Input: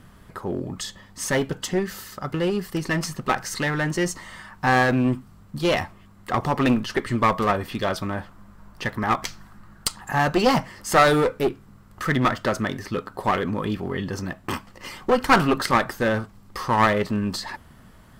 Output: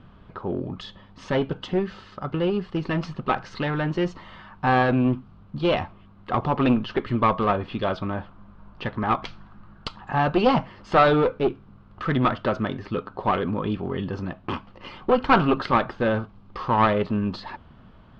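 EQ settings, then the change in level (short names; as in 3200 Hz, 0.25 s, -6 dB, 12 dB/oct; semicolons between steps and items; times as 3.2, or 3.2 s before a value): LPF 3500 Hz 24 dB/oct; bell 1900 Hz -9 dB 0.41 oct; 0.0 dB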